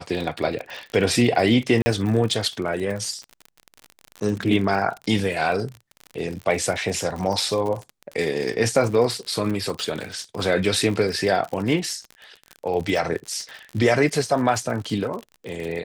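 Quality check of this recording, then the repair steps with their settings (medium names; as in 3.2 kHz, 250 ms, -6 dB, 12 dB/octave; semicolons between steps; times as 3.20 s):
crackle 48 per s -28 dBFS
1.82–1.86 s: dropout 40 ms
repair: de-click; interpolate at 1.82 s, 40 ms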